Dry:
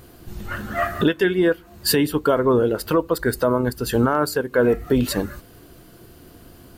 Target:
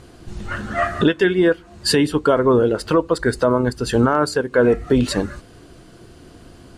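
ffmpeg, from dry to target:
ffmpeg -i in.wav -af "lowpass=frequency=9000:width=0.5412,lowpass=frequency=9000:width=1.3066,volume=2.5dB" out.wav

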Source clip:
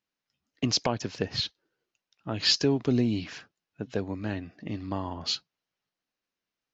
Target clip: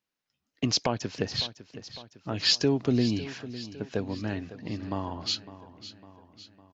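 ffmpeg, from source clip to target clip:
ffmpeg -i in.wav -af "aecho=1:1:555|1110|1665|2220|2775:0.178|0.0978|0.0538|0.0296|0.0163" out.wav

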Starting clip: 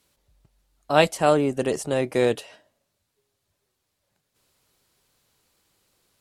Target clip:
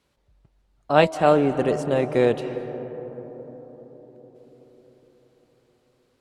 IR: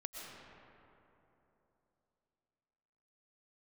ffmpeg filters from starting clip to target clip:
-filter_complex "[0:a]aemphasis=mode=reproduction:type=75kf,bandreject=frequency=320.4:width_type=h:width=4,bandreject=frequency=640.8:width_type=h:width=4,bandreject=frequency=961.2:width_type=h:width=4,asplit=2[link_01][link_02];[1:a]atrim=start_sample=2205,asetrate=25578,aresample=44100[link_03];[link_02][link_03]afir=irnorm=-1:irlink=0,volume=-9dB[link_04];[link_01][link_04]amix=inputs=2:normalize=0"

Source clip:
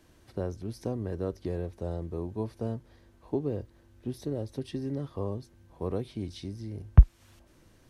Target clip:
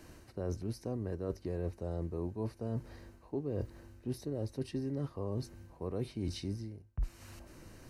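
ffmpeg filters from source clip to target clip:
ffmpeg -i in.wav -af "bandreject=frequency=3400:width=5.3,areverse,acompressor=threshold=-39dB:ratio=12,areverse,volume=6.5dB" out.wav

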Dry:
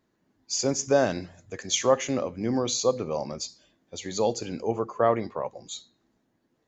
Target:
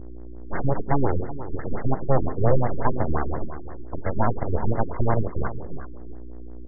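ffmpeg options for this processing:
ffmpeg -i in.wav -filter_complex "[0:a]highpass=97,acrossover=split=270|380|3300[link_01][link_02][link_03][link_04];[link_03]acompressor=threshold=-36dB:ratio=4[link_05];[link_01][link_02][link_05][link_04]amix=inputs=4:normalize=0,alimiter=limit=-20dB:level=0:latency=1:release=195,dynaudnorm=framelen=110:gausssize=9:maxgain=13dB,aeval=exprs='val(0)+0.02*(sin(2*PI*60*n/s)+sin(2*PI*2*60*n/s)/2+sin(2*PI*3*60*n/s)/3+sin(2*PI*4*60*n/s)/4+sin(2*PI*5*60*n/s)/5)':channel_layout=same,aeval=exprs='abs(val(0))':channel_layout=same,asplit=2[link_06][link_07];[link_07]adelay=379,volume=-13dB,highshelf=frequency=4000:gain=-8.53[link_08];[link_06][link_08]amix=inputs=2:normalize=0,afftfilt=real='re*lt(b*sr/1024,390*pow(2200/390,0.5+0.5*sin(2*PI*5.7*pts/sr)))':imag='im*lt(b*sr/1024,390*pow(2200/390,0.5+0.5*sin(2*PI*5.7*pts/sr)))':win_size=1024:overlap=0.75" out.wav

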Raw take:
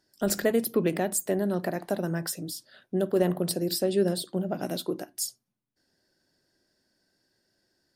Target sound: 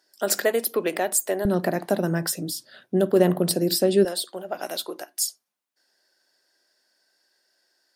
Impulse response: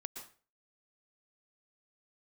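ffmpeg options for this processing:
-af "asetnsamples=nb_out_samples=441:pad=0,asendcmd='1.45 highpass f 120;4.05 highpass f 660',highpass=490,volume=6dB"

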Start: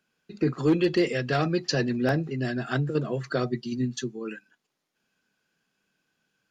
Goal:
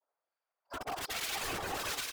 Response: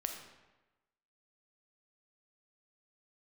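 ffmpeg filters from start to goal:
-filter_complex "[0:a]areverse,highpass=270,afftfilt=real='re*lt(hypot(re,im),0.447)':imag='im*lt(hypot(re,im),0.447)':win_size=1024:overlap=0.75,lowpass=3200,tiltshelf=frequency=1400:gain=7,adynamicsmooth=sensitivity=7:basefreq=540,aeval=exprs='(mod(15*val(0)+1,2)-1)/15':channel_layout=same,asetrate=134946,aresample=44100,aecho=1:1:230|379.5|476.7|539.8|580.9:0.631|0.398|0.251|0.158|0.1,acrossover=split=1600[link_01][link_02];[link_01]aeval=exprs='val(0)*(1-0.7/2+0.7/2*cos(2*PI*1.2*n/s))':channel_layout=same[link_03];[link_02]aeval=exprs='val(0)*(1-0.7/2-0.7/2*cos(2*PI*1.2*n/s))':channel_layout=same[link_04];[link_03][link_04]amix=inputs=2:normalize=0,afftfilt=real='hypot(re,im)*cos(2*PI*random(0))':imag='hypot(re,im)*sin(2*PI*random(1))':win_size=512:overlap=0.75"

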